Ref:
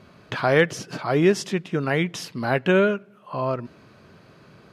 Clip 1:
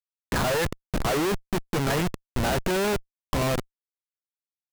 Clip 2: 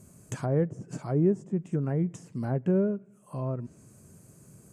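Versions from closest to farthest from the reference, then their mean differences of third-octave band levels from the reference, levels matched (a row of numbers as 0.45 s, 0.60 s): 2, 1; 8.0 dB, 13.0 dB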